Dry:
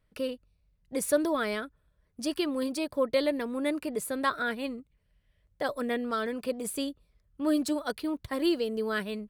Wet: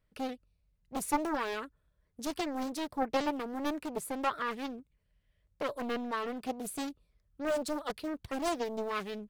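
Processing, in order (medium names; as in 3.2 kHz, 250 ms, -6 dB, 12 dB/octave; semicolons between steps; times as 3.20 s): loudspeaker Doppler distortion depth 0.94 ms; trim -4 dB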